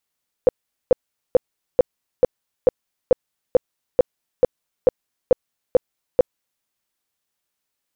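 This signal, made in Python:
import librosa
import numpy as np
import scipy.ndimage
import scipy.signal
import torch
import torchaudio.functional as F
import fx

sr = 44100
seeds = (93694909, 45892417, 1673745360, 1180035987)

y = fx.tone_burst(sr, hz=505.0, cycles=9, every_s=0.44, bursts=14, level_db=-8.0)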